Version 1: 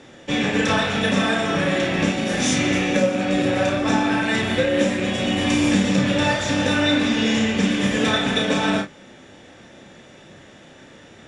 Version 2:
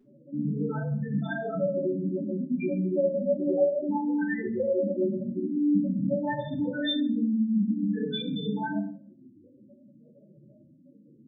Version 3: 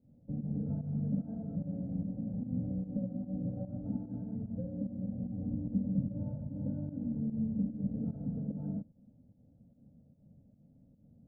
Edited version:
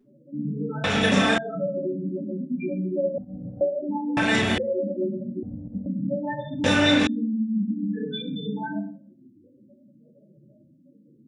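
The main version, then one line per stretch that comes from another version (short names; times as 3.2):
2
0.84–1.38 from 1
3.18–3.61 from 3
4.17–4.58 from 1
5.43–5.86 from 3
6.64–7.07 from 1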